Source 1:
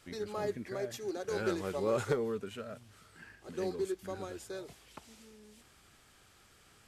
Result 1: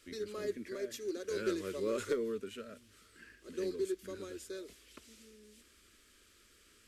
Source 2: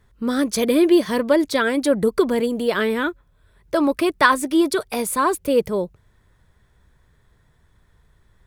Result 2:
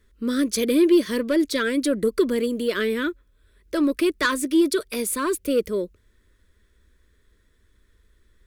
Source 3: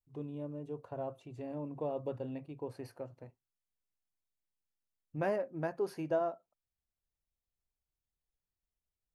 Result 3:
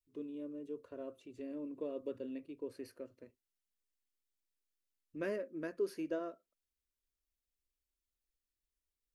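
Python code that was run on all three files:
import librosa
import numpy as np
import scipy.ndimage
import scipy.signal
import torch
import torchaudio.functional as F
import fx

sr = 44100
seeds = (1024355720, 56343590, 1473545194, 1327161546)

y = 10.0 ** (-8.5 / 20.0) * np.tanh(x / 10.0 ** (-8.5 / 20.0))
y = fx.fixed_phaser(y, sr, hz=330.0, stages=4)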